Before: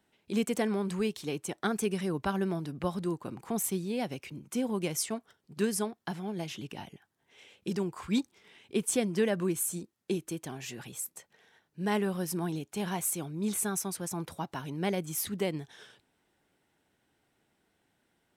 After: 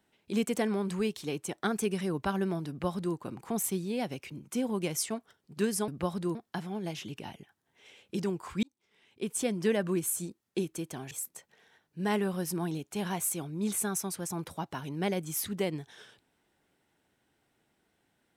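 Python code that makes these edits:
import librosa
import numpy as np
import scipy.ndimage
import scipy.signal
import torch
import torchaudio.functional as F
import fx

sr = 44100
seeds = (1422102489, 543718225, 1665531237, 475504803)

y = fx.edit(x, sr, fx.duplicate(start_s=2.69, length_s=0.47, to_s=5.88),
    fx.fade_in_span(start_s=8.16, length_s=1.05),
    fx.cut(start_s=10.64, length_s=0.28), tone=tone)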